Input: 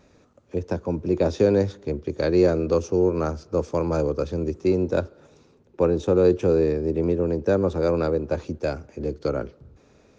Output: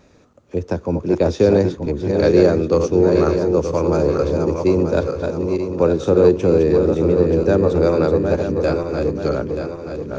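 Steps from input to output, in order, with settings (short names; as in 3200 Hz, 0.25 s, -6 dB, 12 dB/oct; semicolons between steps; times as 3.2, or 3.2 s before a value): regenerating reverse delay 0.465 s, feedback 67%, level -5 dB; gain +4.5 dB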